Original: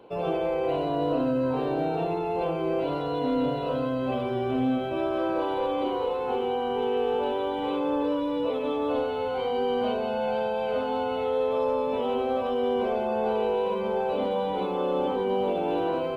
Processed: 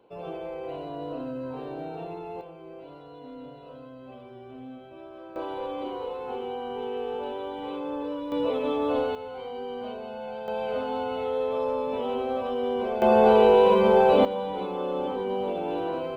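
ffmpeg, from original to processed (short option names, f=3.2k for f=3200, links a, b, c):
-af "asetnsamples=n=441:p=0,asendcmd='2.41 volume volume -17dB;5.36 volume volume -6dB;8.32 volume volume 1dB;9.15 volume volume -9dB;10.48 volume volume -2dB;13.02 volume volume 9dB;14.25 volume volume -3dB',volume=-9dB"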